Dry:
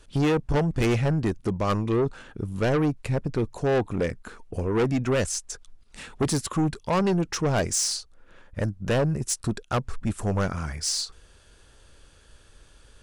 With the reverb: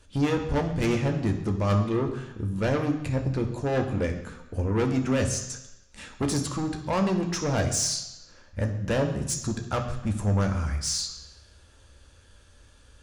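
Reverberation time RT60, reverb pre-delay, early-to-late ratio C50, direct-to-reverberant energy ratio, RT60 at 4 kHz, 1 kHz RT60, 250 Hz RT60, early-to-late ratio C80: 0.95 s, 3 ms, 8.5 dB, 3.0 dB, 0.95 s, 1.0 s, 0.90 s, 10.5 dB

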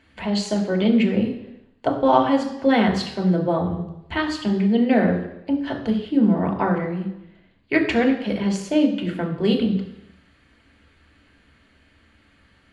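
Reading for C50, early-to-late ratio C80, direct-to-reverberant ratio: 8.5 dB, 10.5 dB, 1.0 dB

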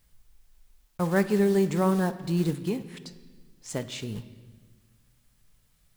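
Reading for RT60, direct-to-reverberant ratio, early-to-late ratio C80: 1.4 s, 10.5 dB, 15.5 dB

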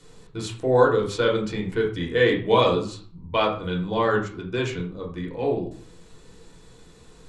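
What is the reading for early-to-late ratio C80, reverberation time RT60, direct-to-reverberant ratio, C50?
12.5 dB, 0.45 s, -1.5 dB, 8.5 dB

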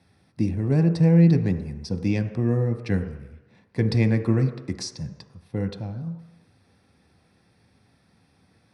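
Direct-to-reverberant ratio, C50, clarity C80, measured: 6.0 dB, 10.0 dB, 11.5 dB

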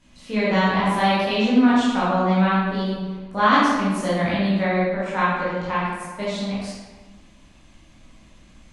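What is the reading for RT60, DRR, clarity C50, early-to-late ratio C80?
1.3 s, -10.0 dB, -2.0 dB, 1.0 dB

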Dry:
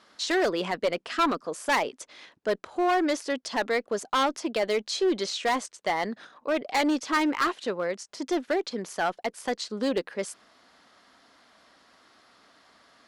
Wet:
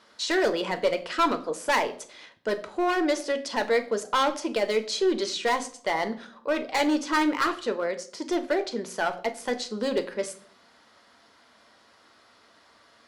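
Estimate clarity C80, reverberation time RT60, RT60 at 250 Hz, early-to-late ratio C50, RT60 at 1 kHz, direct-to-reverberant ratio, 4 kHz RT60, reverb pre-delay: 18.5 dB, 0.55 s, 0.80 s, 15.0 dB, 0.50 s, 8.0 dB, 0.45 s, 9 ms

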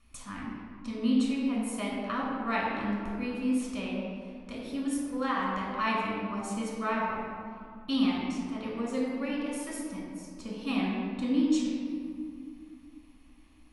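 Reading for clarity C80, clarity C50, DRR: 1.0 dB, -1.0 dB, -4.5 dB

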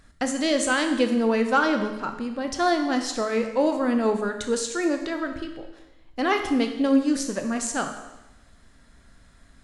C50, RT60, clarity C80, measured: 7.5 dB, 0.95 s, 10.0 dB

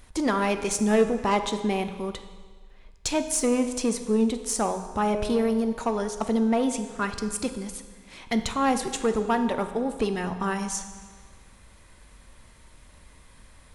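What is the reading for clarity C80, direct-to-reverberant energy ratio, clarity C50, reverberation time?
11.5 dB, 8.0 dB, 9.5 dB, 1.6 s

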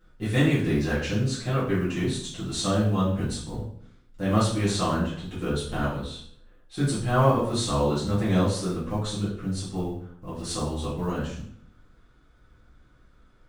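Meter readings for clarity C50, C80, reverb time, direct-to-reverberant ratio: 3.5 dB, 8.0 dB, 0.60 s, -11.5 dB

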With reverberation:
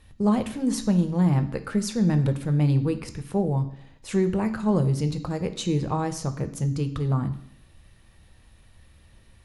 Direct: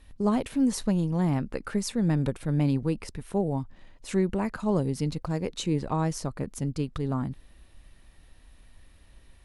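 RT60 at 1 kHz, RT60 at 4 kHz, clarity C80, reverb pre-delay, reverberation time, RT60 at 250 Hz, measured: 0.70 s, 0.65 s, 16.0 dB, 3 ms, 0.70 s, 0.70 s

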